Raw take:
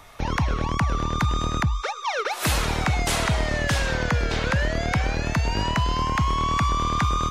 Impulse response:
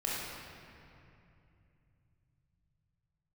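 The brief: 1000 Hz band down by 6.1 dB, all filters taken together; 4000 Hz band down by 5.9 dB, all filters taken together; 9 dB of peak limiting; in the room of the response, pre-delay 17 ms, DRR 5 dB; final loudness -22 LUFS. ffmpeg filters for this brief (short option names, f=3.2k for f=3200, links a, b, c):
-filter_complex "[0:a]equalizer=f=1k:t=o:g=-7,equalizer=f=4k:t=o:g=-7.5,alimiter=limit=-24dB:level=0:latency=1,asplit=2[a][b];[1:a]atrim=start_sample=2205,adelay=17[c];[b][c]afir=irnorm=-1:irlink=0,volume=-11.5dB[d];[a][d]amix=inputs=2:normalize=0,volume=9dB"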